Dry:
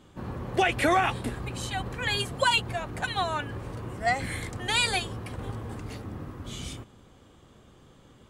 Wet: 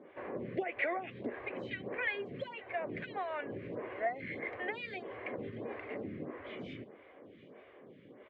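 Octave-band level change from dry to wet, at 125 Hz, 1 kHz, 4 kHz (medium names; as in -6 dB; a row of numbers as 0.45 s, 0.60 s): -16.5 dB, -13.5 dB, -22.5 dB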